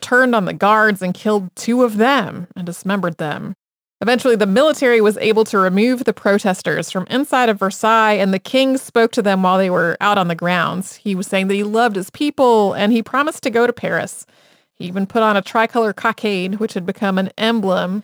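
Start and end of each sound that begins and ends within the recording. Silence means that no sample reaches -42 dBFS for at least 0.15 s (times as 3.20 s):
4.01–14.55 s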